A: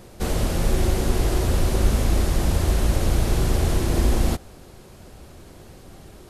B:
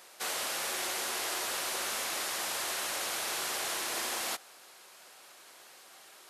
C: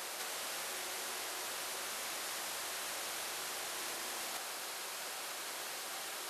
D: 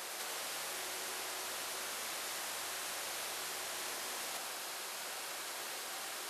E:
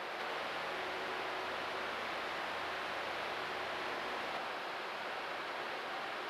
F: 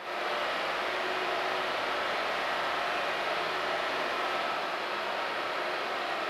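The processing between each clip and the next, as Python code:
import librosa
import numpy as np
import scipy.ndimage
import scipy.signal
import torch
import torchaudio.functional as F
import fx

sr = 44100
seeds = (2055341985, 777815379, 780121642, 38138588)

y1 = scipy.signal.sosfilt(scipy.signal.butter(2, 1100.0, 'highpass', fs=sr, output='sos'), x)
y2 = fx.over_compress(y1, sr, threshold_db=-44.0, ratio=-1.0)
y2 = F.gain(torch.from_numpy(y2), 3.0).numpy()
y3 = y2 + 10.0 ** (-6.5 / 20.0) * np.pad(y2, (int(99 * sr / 1000.0), 0))[:len(y2)]
y3 = F.gain(torch.from_numpy(y3), -1.0).numpy()
y4 = fx.air_absorb(y3, sr, metres=370.0)
y4 = F.gain(torch.from_numpy(y4), 7.5).numpy()
y5 = fx.rev_freeverb(y4, sr, rt60_s=0.83, hf_ratio=0.9, predelay_ms=20, drr_db=-7.0)
y5 = F.gain(torch.from_numpy(y5), 1.0).numpy()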